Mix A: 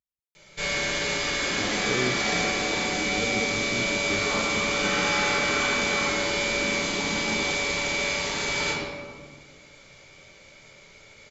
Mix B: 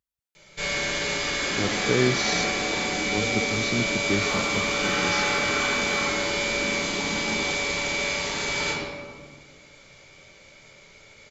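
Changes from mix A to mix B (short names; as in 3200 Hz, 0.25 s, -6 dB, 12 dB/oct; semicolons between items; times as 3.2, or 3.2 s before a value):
speech +7.5 dB; second sound: add high shelf 5400 Hz +9.5 dB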